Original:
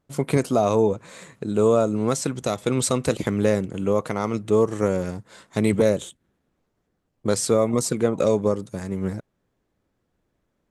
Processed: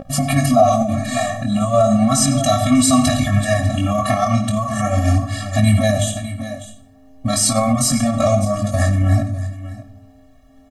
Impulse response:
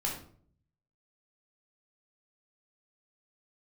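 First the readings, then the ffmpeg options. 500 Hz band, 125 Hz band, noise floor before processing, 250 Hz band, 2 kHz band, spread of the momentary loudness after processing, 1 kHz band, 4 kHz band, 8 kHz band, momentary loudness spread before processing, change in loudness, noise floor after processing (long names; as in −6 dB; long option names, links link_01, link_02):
+1.5 dB, +11.5 dB, −75 dBFS, +7.0 dB, +9.0 dB, 12 LU, +10.5 dB, +11.5 dB, +10.5 dB, 11 LU, +6.0 dB, −48 dBFS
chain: -filter_complex "[0:a]aecho=1:1:2.8:0.95,asplit=2[link_01][link_02];[link_02]acompressor=threshold=-25dB:ratio=10,volume=0dB[link_03];[link_01][link_03]amix=inputs=2:normalize=0,aeval=exprs='val(0)+0.1*sin(2*PI*440*n/s)':channel_layout=same,aecho=1:1:600:0.133,asoftclip=type=hard:threshold=-4.5dB,flanger=delay=19.5:depth=5.4:speed=0.35,asplit=2[link_04][link_05];[1:a]atrim=start_sample=2205,asetrate=41013,aresample=44100,adelay=53[link_06];[link_05][link_06]afir=irnorm=-1:irlink=0,volume=-15dB[link_07];[link_04][link_07]amix=inputs=2:normalize=0,alimiter=level_in=16.5dB:limit=-1dB:release=50:level=0:latency=1,afftfilt=real='re*eq(mod(floor(b*sr/1024/270),2),0)':imag='im*eq(mod(floor(b*sr/1024/270),2),0)':win_size=1024:overlap=0.75,volume=-1dB"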